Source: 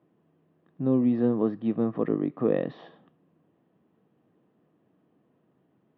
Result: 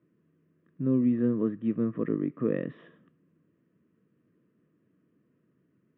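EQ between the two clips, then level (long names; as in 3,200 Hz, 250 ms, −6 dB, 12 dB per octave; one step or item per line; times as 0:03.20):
high-frequency loss of the air 110 metres
phaser with its sweep stopped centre 1,900 Hz, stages 4
0.0 dB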